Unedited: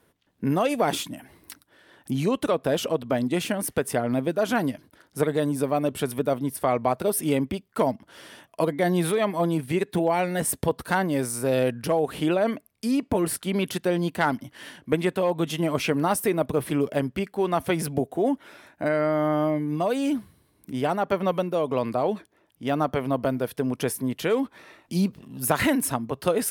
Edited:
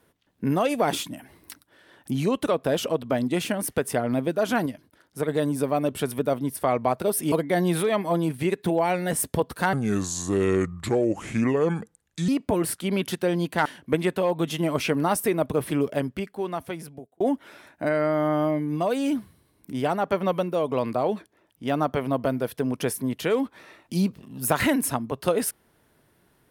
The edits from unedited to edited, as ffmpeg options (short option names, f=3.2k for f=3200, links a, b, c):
-filter_complex "[0:a]asplit=8[a][b][c][d][e][f][g][h];[a]atrim=end=4.662[i];[b]atrim=start=4.658:end=5.282,asetpts=PTS-STARTPTS,volume=-4dB[j];[c]atrim=start=5.278:end=7.322[k];[d]atrim=start=8.608:end=11.024[l];[e]atrim=start=11.02:end=12.91,asetpts=PTS-STARTPTS,asetrate=32634,aresample=44100[m];[f]atrim=start=12.906:end=14.282[n];[g]atrim=start=14.648:end=18.2,asetpts=PTS-STARTPTS,afade=t=out:st=2.182:d=1.37[o];[h]atrim=start=18.2,asetpts=PTS-STARTPTS,afade=t=in:d=0.004:c=hsin[p];[i][j]acrossfade=d=0.004:c1=hsin:c2=hsin[q];[q][k]acrossfade=d=0.004:c1=hsin:c2=hsin[r];[r][l]acrossfade=d=0.004:c1=hsin:c2=hsin[s];[s][m]acrossfade=d=0.004:c1=hsin:c2=hsin[t];[t][n]acrossfade=d=0.004:c1=hsin:c2=hsin[u];[o][p]concat=n=2:v=0:a=1[v];[u][v]acrossfade=d=0.004:c1=hsin:c2=hsin"